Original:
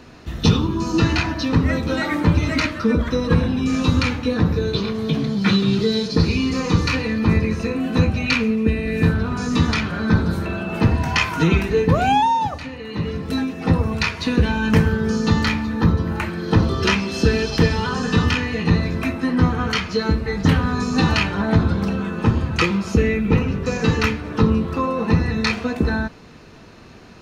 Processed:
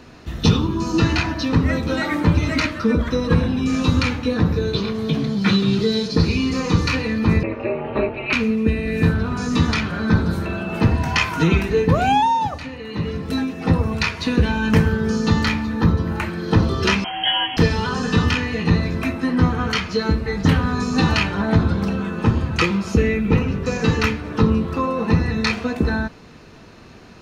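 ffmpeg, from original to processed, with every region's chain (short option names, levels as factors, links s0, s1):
-filter_complex "[0:a]asettb=1/sr,asplit=3[s0][s1][s2];[s0]atrim=end=7.434[s3];[s1]atrim=start=7.43:end=8.33,asetpts=PTS-STARTPTS,afade=t=in:d=0.004:c=qsin,afade=t=out:st=0.896:d=0.004:c=qsin,highpass=310,equalizer=f=330:t=q:w=4:g=7,equalizer=f=460:t=q:w=4:g=8,equalizer=f=710:t=q:w=4:g=7,equalizer=f=1100:t=q:w=4:g=4,equalizer=f=1600:t=q:w=4:g=-4,equalizer=f=2400:t=q:w=4:g=3,lowpass=f=2700:w=0.5412,lowpass=f=2700:w=1.3066,aecho=1:1:5.6:0.5,atrim=end_sample=39690,aeval=exprs='val(0)*sin(2*PI*110*n/s)':c=same[s4];[s2]atrim=start=8.326[s5];[s3][s4]acrossfade=d=0.004:c1=hsin:c2=qsin[s6];[s6][s5]acrossfade=d=0.004:c1=qsin:c2=hsin,asettb=1/sr,asplit=3[s7][s8][s9];[s7]atrim=end=17.044[s10];[s8]atrim=start=17.04:end=17.57,asetpts=PTS-STARTPTS,afade=t=in:d=0.004:c=qsin,afade=t=out:st=0.526:d=0.004:c=qsin,aemphasis=mode=production:type=riaa,asplit=2[s11][s12];[s12]adelay=14,volume=0.75[s13];[s11][s13]amix=inputs=2:normalize=0,atrim=end_sample=23373,lowpass=f=2900:t=q:w=0.5098,lowpass=f=2900:t=q:w=0.6013,lowpass=f=2900:t=q:w=0.9,lowpass=f=2900:t=q:w=2.563,afreqshift=-3400[s14];[s9]atrim=start=17.566[s15];[s10][s14]acrossfade=d=0.004:c1=hsin:c2=qsin[s16];[s16][s15]acrossfade=d=0.004:c1=qsin:c2=hsin"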